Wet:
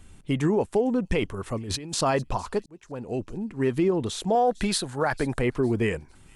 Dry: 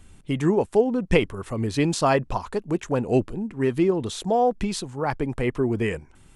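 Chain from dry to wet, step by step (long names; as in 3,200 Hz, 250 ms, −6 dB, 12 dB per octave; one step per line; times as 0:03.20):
0:04.35–0:05.39: graphic EQ with 15 bands 630 Hz +6 dB, 1,600 Hz +11 dB, 4,000 Hz +8 dB, 10,000 Hz +11 dB
brickwall limiter −14.5 dBFS, peak gain reduction 8.5 dB
0:01.57–0:02.01: compressor whose output falls as the input rises −33 dBFS, ratio −1
delay with a high-pass on its return 455 ms, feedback 30%, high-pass 4,500 Hz, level −17 dB
0:02.66–0:03.68: fade in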